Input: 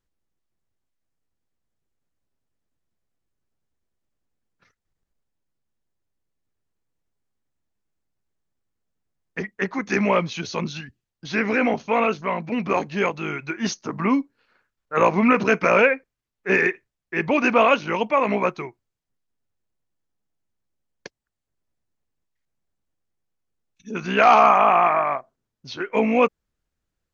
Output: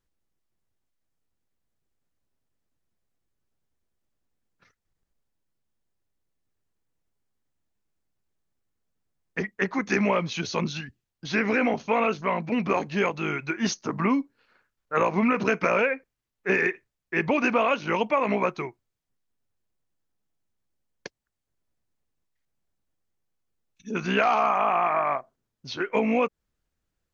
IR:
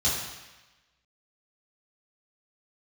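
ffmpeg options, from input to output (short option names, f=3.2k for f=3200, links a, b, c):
-af "acompressor=threshold=-19dB:ratio=6"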